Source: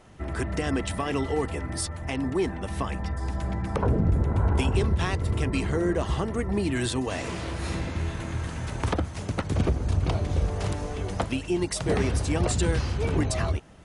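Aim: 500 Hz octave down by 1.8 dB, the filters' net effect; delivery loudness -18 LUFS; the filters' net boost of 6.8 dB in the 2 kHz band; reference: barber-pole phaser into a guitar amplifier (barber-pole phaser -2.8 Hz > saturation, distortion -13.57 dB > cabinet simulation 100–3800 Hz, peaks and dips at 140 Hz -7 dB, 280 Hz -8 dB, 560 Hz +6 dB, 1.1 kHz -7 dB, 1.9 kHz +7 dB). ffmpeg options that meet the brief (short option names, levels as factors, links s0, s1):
-filter_complex "[0:a]equalizer=f=500:t=o:g=-4,equalizer=f=2000:t=o:g=4,asplit=2[s0][s1];[s1]afreqshift=-2.8[s2];[s0][s2]amix=inputs=2:normalize=1,asoftclip=threshold=0.0631,highpass=100,equalizer=f=140:t=q:w=4:g=-7,equalizer=f=280:t=q:w=4:g=-8,equalizer=f=560:t=q:w=4:g=6,equalizer=f=1100:t=q:w=4:g=-7,equalizer=f=1900:t=q:w=4:g=7,lowpass=f=3800:w=0.5412,lowpass=f=3800:w=1.3066,volume=7.08"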